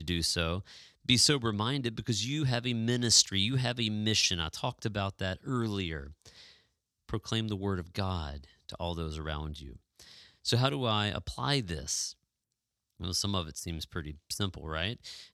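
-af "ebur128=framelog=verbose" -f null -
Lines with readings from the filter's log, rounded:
Integrated loudness:
  I:         -30.8 LUFS
  Threshold: -41.6 LUFS
Loudness range:
  LRA:         9.1 LU
  Threshold: -51.8 LUFS
  LRA low:   -36.9 LUFS
  LRA high:  -27.7 LUFS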